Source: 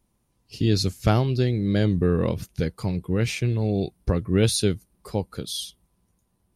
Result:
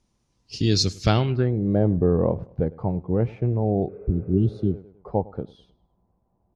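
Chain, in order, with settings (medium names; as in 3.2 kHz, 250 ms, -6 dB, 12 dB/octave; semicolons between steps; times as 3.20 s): feedback delay 103 ms, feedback 40%, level -21.5 dB; low-pass sweep 5.9 kHz -> 780 Hz, 1.01–1.57 s; spectral replace 3.91–4.71 s, 400–2700 Hz after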